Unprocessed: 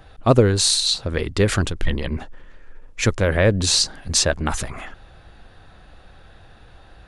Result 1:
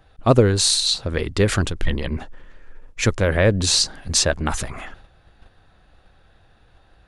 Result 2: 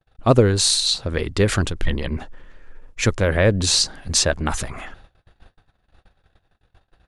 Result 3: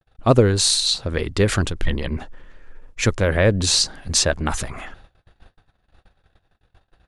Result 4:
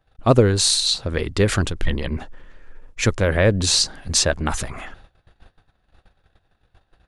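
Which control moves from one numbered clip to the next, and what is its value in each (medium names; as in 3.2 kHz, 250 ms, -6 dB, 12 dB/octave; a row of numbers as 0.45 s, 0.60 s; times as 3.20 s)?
gate, range: -8 dB, -40 dB, -59 dB, -22 dB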